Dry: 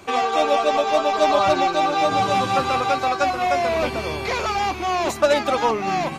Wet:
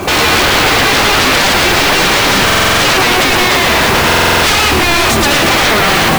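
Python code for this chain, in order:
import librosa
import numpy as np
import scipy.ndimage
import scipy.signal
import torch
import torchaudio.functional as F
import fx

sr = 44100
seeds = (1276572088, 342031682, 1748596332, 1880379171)

p1 = fx.high_shelf(x, sr, hz=2200.0, db=-9.0)
p2 = fx.over_compress(p1, sr, threshold_db=-26.0, ratio=-1.0)
p3 = p1 + (p2 * librosa.db_to_amplitude(-0.5))
p4 = fx.fold_sine(p3, sr, drive_db=18, ceiling_db=-4.5)
p5 = fx.mod_noise(p4, sr, seeds[0], snr_db=14)
p6 = p5 + fx.echo_single(p5, sr, ms=111, db=-5.5, dry=0)
p7 = fx.buffer_glitch(p6, sr, at_s=(2.45, 4.06), block=2048, repeats=7)
p8 = fx.record_warp(p7, sr, rpm=33.33, depth_cents=100.0)
y = p8 * librosa.db_to_amplitude(-3.5)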